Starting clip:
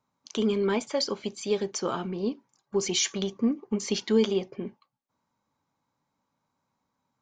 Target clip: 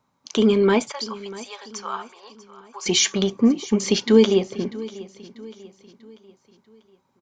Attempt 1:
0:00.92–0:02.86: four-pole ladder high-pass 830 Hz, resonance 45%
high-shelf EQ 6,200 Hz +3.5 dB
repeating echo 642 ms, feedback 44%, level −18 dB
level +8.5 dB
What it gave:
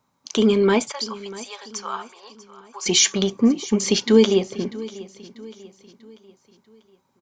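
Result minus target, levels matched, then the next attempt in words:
8,000 Hz band +3.0 dB
0:00.92–0:02.86: four-pole ladder high-pass 830 Hz, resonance 45%
high-shelf EQ 6,200 Hz −3.5 dB
repeating echo 642 ms, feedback 44%, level −18 dB
level +8.5 dB

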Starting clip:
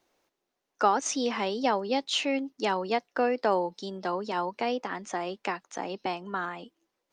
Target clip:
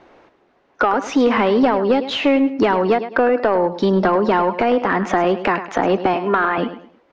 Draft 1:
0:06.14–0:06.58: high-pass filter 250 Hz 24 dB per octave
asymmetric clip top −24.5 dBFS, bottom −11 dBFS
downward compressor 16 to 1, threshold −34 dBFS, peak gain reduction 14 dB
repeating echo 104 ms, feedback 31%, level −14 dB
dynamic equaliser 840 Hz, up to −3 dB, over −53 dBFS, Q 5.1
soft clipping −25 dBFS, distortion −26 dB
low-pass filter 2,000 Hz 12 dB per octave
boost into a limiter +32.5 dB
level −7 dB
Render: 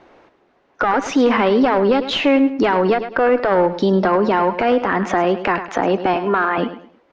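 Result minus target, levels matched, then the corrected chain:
asymmetric clip: distortion +18 dB; soft clipping: distortion −12 dB
0:06.14–0:06.58: high-pass filter 250 Hz 24 dB per octave
asymmetric clip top −13 dBFS, bottom −11 dBFS
downward compressor 16 to 1, threshold −34 dBFS, peak gain reduction 17 dB
repeating echo 104 ms, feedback 31%, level −14 dB
dynamic equaliser 840 Hz, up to −3 dB, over −53 dBFS, Q 5.1
soft clipping −33 dBFS, distortion −14 dB
low-pass filter 2,000 Hz 12 dB per octave
boost into a limiter +32.5 dB
level −7 dB

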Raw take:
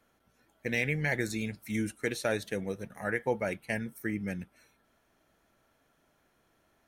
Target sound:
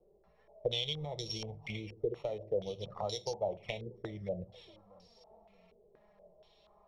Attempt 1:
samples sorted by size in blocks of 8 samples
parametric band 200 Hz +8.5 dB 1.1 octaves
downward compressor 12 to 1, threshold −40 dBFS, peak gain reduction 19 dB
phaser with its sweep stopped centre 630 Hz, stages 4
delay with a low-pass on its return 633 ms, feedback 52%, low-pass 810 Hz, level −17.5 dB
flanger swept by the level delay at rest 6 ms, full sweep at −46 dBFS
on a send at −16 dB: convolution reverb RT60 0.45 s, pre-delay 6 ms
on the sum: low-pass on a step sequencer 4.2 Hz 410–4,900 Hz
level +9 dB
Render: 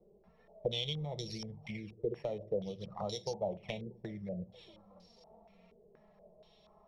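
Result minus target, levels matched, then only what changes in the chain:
250 Hz band +4.5 dB
change: parametric band 200 Hz −2 dB 1.1 octaves

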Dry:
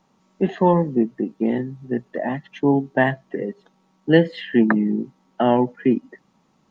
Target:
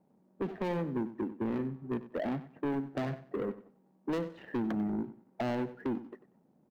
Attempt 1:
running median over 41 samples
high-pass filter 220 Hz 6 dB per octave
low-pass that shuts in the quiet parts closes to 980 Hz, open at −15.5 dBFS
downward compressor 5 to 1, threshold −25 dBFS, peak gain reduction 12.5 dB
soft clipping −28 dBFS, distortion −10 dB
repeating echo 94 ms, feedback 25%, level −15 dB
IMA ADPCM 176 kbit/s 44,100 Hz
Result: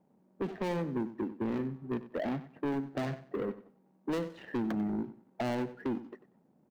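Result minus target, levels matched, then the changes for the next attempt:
8,000 Hz band +5.5 dB
add after high-pass filter: high-shelf EQ 3,700 Hz −9.5 dB

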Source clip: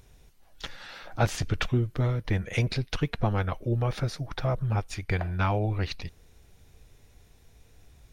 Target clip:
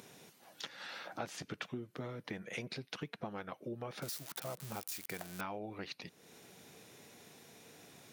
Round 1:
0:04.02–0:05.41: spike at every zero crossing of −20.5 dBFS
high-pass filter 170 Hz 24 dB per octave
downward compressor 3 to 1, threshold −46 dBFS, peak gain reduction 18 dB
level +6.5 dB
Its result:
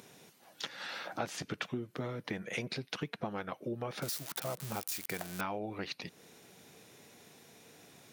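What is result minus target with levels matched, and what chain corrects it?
downward compressor: peak gain reduction −4.5 dB
0:04.02–0:05.41: spike at every zero crossing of −20.5 dBFS
high-pass filter 170 Hz 24 dB per octave
downward compressor 3 to 1, threshold −53 dBFS, peak gain reduction 22.5 dB
level +6.5 dB

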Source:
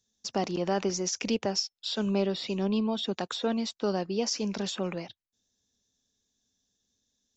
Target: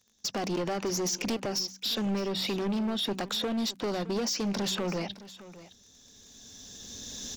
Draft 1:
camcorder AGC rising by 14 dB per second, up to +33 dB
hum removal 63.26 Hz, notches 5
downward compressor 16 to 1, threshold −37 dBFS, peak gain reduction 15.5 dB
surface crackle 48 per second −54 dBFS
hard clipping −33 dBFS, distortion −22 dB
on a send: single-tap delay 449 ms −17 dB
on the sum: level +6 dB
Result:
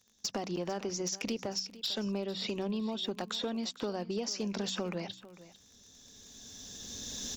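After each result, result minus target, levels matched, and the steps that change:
downward compressor: peak gain reduction +8.5 dB; echo 164 ms early
change: downward compressor 16 to 1, threshold −28 dBFS, peak gain reduction 7 dB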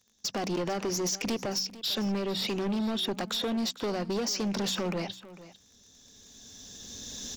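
echo 164 ms early
change: single-tap delay 613 ms −17 dB

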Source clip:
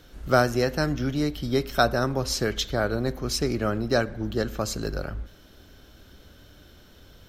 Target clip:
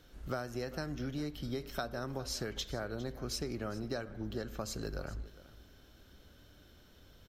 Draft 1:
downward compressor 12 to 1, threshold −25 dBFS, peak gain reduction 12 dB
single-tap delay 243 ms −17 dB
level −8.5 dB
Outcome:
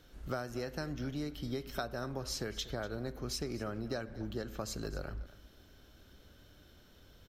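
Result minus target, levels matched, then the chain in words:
echo 163 ms early
downward compressor 12 to 1, threshold −25 dBFS, peak gain reduction 12 dB
single-tap delay 406 ms −17 dB
level −8.5 dB

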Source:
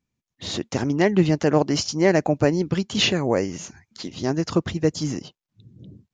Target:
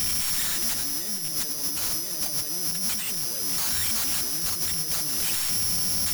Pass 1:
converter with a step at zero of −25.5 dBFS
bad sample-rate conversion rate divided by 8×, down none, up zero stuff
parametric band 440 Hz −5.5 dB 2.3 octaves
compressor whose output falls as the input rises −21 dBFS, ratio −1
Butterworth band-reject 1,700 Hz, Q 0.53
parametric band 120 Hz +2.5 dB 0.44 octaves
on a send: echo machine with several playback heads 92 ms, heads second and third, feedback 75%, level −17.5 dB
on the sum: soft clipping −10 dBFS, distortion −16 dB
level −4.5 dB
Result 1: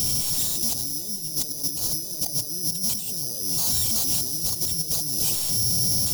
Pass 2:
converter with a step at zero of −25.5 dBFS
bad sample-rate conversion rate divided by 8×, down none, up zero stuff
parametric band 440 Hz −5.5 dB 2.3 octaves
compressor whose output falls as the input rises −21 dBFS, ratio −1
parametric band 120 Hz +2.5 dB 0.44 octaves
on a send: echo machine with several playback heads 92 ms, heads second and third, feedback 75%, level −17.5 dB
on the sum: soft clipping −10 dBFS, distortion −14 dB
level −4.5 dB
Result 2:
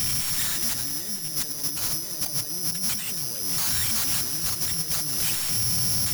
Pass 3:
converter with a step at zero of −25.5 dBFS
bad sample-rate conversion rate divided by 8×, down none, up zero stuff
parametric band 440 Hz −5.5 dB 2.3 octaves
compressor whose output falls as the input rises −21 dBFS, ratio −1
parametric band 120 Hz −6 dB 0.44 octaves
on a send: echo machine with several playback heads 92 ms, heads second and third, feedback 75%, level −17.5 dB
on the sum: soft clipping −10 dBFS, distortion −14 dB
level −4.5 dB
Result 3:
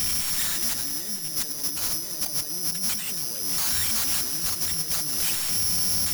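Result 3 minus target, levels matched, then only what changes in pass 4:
converter with a step at zero: distortion −7 dB
change: converter with a step at zero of −15.5 dBFS

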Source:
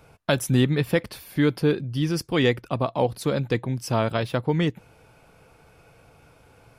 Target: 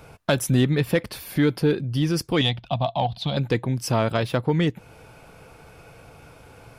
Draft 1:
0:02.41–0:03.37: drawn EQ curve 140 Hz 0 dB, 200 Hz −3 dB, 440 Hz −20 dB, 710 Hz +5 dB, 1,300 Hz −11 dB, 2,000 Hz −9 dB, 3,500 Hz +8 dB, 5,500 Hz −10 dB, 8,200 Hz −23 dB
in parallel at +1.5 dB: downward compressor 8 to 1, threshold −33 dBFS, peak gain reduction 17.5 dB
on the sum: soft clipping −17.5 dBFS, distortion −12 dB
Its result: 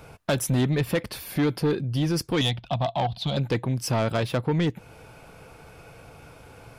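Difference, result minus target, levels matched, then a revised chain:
soft clipping: distortion +12 dB
0:02.41–0:03.37: drawn EQ curve 140 Hz 0 dB, 200 Hz −3 dB, 440 Hz −20 dB, 710 Hz +5 dB, 1,300 Hz −11 dB, 2,000 Hz −9 dB, 3,500 Hz +8 dB, 5,500 Hz −10 dB, 8,200 Hz −23 dB
in parallel at +1.5 dB: downward compressor 8 to 1, threshold −33 dBFS, peak gain reduction 17.5 dB
on the sum: soft clipping −8.5 dBFS, distortion −24 dB

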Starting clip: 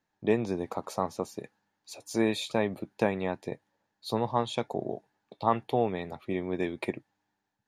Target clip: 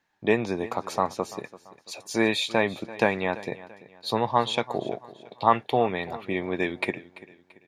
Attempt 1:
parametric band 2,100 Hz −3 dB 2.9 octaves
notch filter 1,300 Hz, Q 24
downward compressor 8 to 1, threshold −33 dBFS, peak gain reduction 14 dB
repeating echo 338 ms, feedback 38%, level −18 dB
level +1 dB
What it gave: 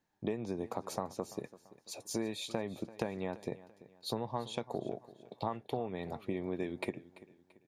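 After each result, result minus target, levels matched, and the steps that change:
downward compressor: peak gain reduction +14 dB; 2,000 Hz band −6.5 dB
remove: downward compressor 8 to 1, threshold −33 dBFS, peak gain reduction 14 dB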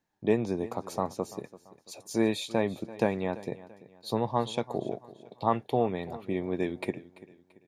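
2,000 Hz band −7.0 dB
change: parametric band 2,100 Hz +9 dB 2.9 octaves

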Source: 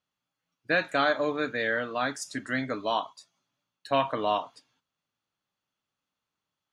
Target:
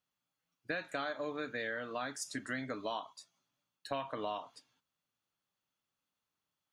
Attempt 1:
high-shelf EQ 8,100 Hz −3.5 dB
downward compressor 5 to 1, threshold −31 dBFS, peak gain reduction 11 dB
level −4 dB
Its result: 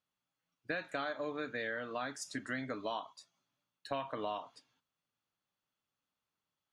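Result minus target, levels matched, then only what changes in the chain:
8,000 Hz band −3.0 dB
change: high-shelf EQ 8,100 Hz +5.5 dB

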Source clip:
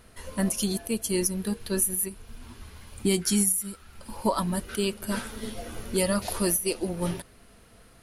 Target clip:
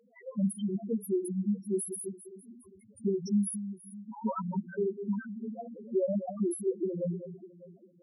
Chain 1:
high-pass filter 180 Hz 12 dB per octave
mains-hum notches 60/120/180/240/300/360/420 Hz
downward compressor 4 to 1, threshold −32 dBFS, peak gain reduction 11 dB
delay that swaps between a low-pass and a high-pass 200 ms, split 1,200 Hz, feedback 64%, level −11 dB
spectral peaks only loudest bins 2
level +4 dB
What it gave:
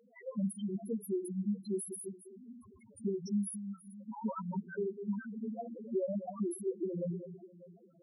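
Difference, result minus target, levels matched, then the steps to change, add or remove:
downward compressor: peak gain reduction +5.5 dB
change: downward compressor 4 to 1, threshold −24.5 dBFS, peak gain reduction 5.5 dB

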